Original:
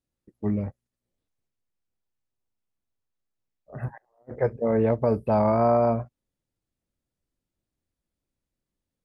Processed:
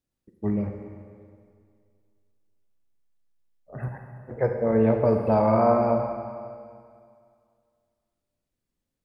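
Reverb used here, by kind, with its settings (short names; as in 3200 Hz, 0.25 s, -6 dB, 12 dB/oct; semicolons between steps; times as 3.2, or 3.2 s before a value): Schroeder reverb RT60 2.2 s, combs from 32 ms, DRR 3.5 dB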